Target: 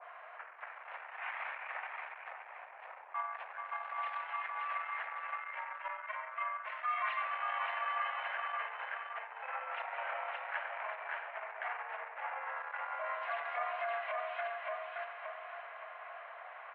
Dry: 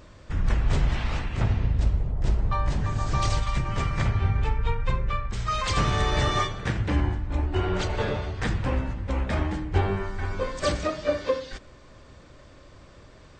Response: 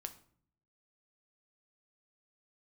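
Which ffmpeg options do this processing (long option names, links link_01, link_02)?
-filter_complex "[0:a]acompressor=threshold=-38dB:ratio=3,asplit=2[link_01][link_02];[1:a]atrim=start_sample=2205,adelay=108[link_03];[link_02][link_03]afir=irnorm=-1:irlink=0,volume=-11dB[link_04];[link_01][link_04]amix=inputs=2:normalize=0,asetrate=35280,aresample=44100,aecho=1:1:570|1140|1710|2280|2850:0.631|0.265|0.111|0.0467|0.0196,alimiter=level_in=7dB:limit=-24dB:level=0:latency=1:release=15,volume=-7dB,asoftclip=type=tanh:threshold=-32.5dB,highpass=frequency=480:width_type=q:width=0.5412,highpass=frequency=480:width_type=q:width=1.307,lowpass=frequency=2200:width_type=q:width=0.5176,lowpass=frequency=2200:width_type=q:width=0.7071,lowpass=frequency=2200:width_type=q:width=1.932,afreqshift=220,adynamicequalizer=threshold=0.00178:dfrequency=1700:dqfactor=0.7:tfrequency=1700:tqfactor=0.7:attack=5:release=100:ratio=0.375:range=3:mode=boostabove:tftype=highshelf,volume=6.5dB"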